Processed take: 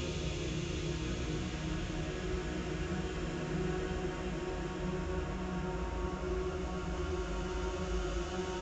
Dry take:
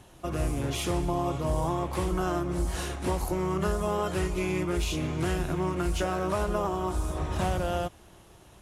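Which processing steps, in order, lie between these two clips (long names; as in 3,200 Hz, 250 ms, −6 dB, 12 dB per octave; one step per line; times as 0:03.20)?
downsampling to 16,000 Hz
three-band delay without the direct sound lows, highs, mids 190/310 ms, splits 220/880 Hz
extreme stretch with random phases 9.1×, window 1.00 s, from 0:05.16
level −6.5 dB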